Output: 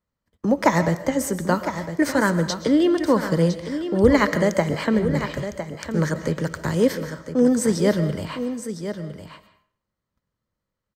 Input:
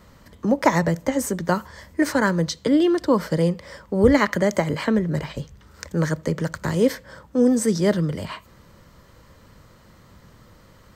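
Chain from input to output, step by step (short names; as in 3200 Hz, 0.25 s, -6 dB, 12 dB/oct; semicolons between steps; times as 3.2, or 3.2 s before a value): gate -43 dBFS, range -33 dB; echo 1.008 s -10 dB; on a send at -12 dB: reverb RT60 0.50 s, pre-delay 90 ms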